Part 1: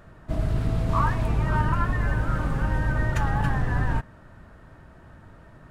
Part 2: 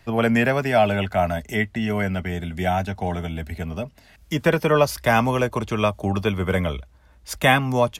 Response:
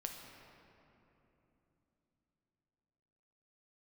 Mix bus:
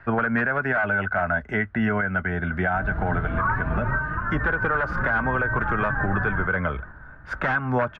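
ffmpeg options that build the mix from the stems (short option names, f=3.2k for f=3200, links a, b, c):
-filter_complex "[0:a]asplit=2[a][b];[b]adelay=4.7,afreqshift=2.6[c];[a][c]amix=inputs=2:normalize=1,adelay=2450,volume=1.5dB,asplit=2[d][e];[e]volume=-12dB[f];[1:a]aeval=exprs='0.237*(abs(mod(val(0)/0.237+3,4)-2)-1)':c=same,volume=2dB,asplit=2[g][h];[h]apad=whole_len=359748[i];[d][i]sidechaingate=range=-10dB:threshold=-40dB:ratio=16:detection=peak[j];[2:a]atrim=start_sample=2205[k];[f][k]afir=irnorm=-1:irlink=0[l];[j][g][l]amix=inputs=3:normalize=0,lowpass=f=1.5k:t=q:w=7.5,alimiter=limit=-14dB:level=0:latency=1:release=214"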